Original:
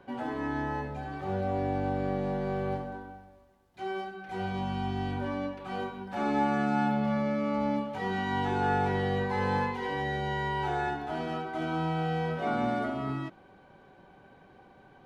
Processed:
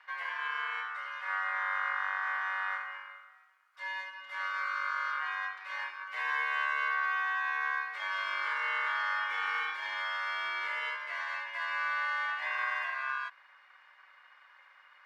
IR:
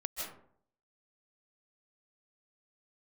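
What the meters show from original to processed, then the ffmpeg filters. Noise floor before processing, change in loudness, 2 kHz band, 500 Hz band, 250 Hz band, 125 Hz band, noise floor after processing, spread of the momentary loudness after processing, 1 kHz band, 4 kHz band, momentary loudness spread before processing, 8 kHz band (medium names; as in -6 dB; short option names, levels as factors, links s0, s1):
-57 dBFS, -1.5 dB, +7.5 dB, -21.0 dB, under -40 dB, under -40 dB, -60 dBFS, 8 LU, -3.0 dB, +2.5 dB, 9 LU, no reading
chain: -filter_complex "[0:a]asplit=2[s0][s1];[s1]alimiter=limit=0.0708:level=0:latency=1,volume=1.19[s2];[s0][s2]amix=inputs=2:normalize=0,aeval=exprs='val(0)*sin(2*PI*1300*n/s)':c=same,highpass=f=1200:t=q:w=1.7,afreqshift=30,volume=0.355"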